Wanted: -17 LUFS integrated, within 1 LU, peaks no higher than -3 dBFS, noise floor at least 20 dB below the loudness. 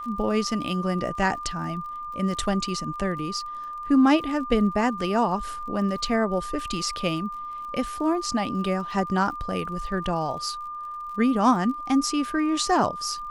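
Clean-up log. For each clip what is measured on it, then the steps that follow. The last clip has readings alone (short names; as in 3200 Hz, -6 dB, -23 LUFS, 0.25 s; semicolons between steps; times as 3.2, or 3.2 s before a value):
ticks 41/s; steady tone 1200 Hz; tone level -32 dBFS; loudness -25.5 LUFS; peak -8.0 dBFS; loudness target -17.0 LUFS
-> de-click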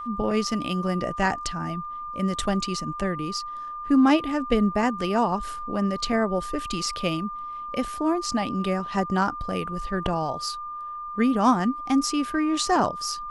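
ticks 0/s; steady tone 1200 Hz; tone level -32 dBFS
-> notch 1200 Hz, Q 30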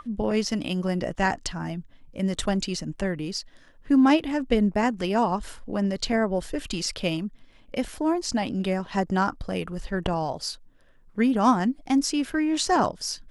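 steady tone none; loudness -26.0 LUFS; peak -7.5 dBFS; loudness target -17.0 LUFS
-> gain +9 dB; limiter -3 dBFS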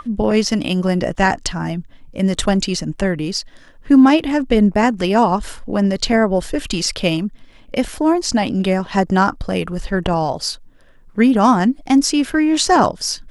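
loudness -17.0 LUFS; peak -3.0 dBFS; noise floor -45 dBFS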